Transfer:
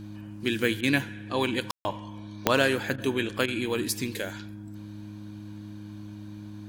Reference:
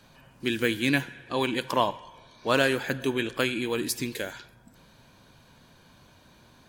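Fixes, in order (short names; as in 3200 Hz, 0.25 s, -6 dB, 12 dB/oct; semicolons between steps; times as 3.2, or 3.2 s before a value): de-click; de-hum 103.9 Hz, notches 3; room tone fill 1.71–1.85; interpolate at 0.81/2.96/3.46, 20 ms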